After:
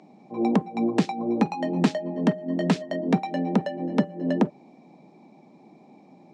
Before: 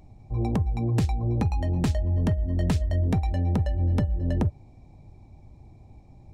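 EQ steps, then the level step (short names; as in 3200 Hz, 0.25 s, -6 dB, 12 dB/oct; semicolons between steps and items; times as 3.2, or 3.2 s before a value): steep high-pass 180 Hz 48 dB/oct; air absorption 91 m; +7.5 dB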